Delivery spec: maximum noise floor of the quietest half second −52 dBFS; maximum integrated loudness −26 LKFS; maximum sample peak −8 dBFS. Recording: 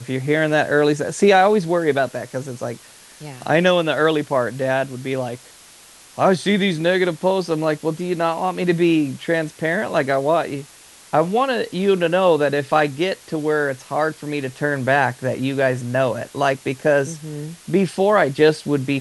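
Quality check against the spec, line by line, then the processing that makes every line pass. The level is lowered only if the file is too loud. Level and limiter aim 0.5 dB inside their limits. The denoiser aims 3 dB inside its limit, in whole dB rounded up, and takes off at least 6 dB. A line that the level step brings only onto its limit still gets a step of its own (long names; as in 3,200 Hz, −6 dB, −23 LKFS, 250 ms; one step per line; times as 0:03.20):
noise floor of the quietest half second −46 dBFS: out of spec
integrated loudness −19.5 LKFS: out of spec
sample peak −3.0 dBFS: out of spec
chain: level −7 dB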